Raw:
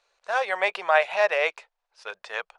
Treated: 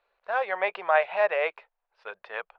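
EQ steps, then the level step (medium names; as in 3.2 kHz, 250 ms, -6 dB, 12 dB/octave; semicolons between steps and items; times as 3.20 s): distance through air 410 m; 0.0 dB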